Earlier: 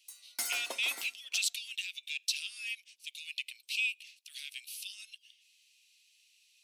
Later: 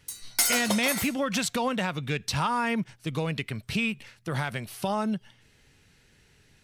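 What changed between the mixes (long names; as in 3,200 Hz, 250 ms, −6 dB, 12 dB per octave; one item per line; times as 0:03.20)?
speech: remove Chebyshev high-pass filter 2,500 Hz, order 5
background +12.0 dB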